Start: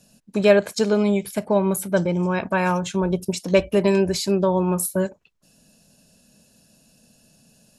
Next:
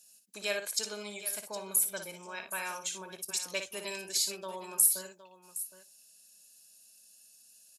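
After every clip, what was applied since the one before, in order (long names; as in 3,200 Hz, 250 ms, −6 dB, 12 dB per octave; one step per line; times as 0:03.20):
first difference
on a send: multi-tap delay 58/764 ms −7.5/−14 dB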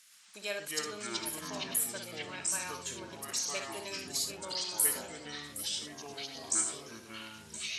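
noise in a band 1,300–8,200 Hz −60 dBFS
delay with pitch and tempo change per echo 116 ms, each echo −5 semitones, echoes 3
level −4 dB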